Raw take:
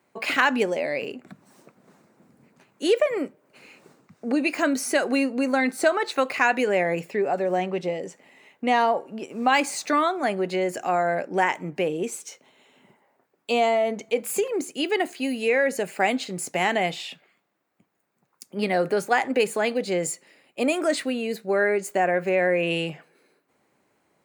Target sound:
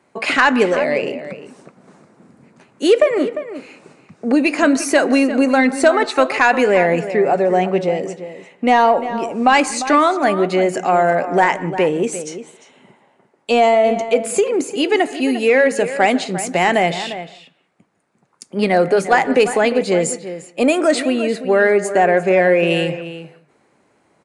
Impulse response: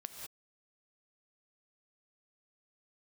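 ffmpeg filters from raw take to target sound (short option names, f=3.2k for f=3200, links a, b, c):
-filter_complex "[0:a]acontrast=82,asplit=2[a][b];[b]adelay=349.9,volume=-12dB,highshelf=f=4k:g=-7.87[c];[a][c]amix=inputs=2:normalize=0,asplit=2[d][e];[1:a]atrim=start_sample=2205,asetrate=48510,aresample=44100,lowpass=2.2k[f];[e][f]afir=irnorm=-1:irlink=0,volume=-6dB[g];[d][g]amix=inputs=2:normalize=0,aresample=22050,aresample=44100"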